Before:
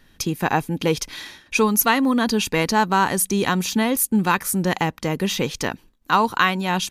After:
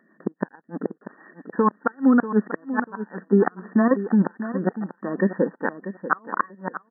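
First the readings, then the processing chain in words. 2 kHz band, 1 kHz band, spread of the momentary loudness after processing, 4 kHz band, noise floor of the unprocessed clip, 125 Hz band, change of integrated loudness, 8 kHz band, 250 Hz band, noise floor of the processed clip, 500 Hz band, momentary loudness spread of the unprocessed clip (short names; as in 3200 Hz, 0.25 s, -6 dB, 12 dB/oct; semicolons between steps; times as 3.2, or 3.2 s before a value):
-7.5 dB, -7.0 dB, 14 LU, under -40 dB, -56 dBFS, -4.5 dB, -3.5 dB, under -40 dB, 0.0 dB, -63 dBFS, -1.0 dB, 8 LU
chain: moving spectral ripple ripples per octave 1.2, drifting -0.8 Hz, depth 9 dB; expander -42 dBFS; dynamic EQ 1400 Hz, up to +8 dB, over -32 dBFS, Q 1.5; level quantiser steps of 10 dB; sample leveller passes 2; upward compressor, threshold -30 dBFS; rotary speaker horn 6.3 Hz; flipped gate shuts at -6 dBFS, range -34 dB; brick-wall FIR band-pass 170–1900 Hz; feedback echo 0.64 s, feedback 20%, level -12 dB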